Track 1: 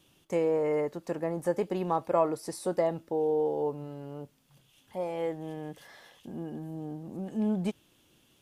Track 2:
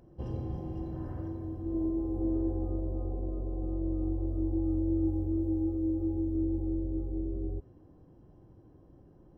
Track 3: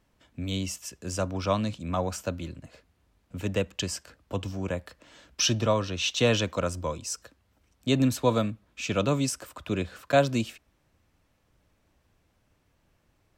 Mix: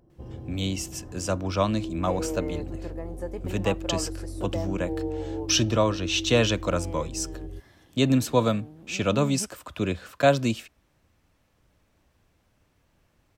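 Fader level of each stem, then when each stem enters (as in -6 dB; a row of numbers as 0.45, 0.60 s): -7.0, -3.5, +2.0 dB; 1.75, 0.00, 0.10 s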